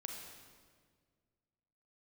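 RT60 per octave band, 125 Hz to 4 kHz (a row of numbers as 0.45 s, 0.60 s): 2.3 s, 2.1 s, 2.0 s, 1.6 s, 1.5 s, 1.3 s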